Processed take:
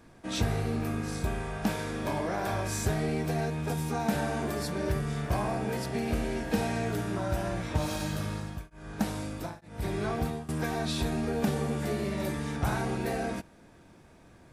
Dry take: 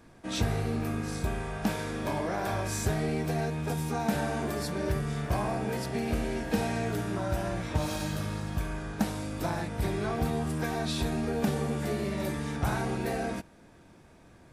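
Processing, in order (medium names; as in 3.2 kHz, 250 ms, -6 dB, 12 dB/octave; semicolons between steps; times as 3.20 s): 8.25–10.49 s: tremolo of two beating tones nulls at 1.1 Hz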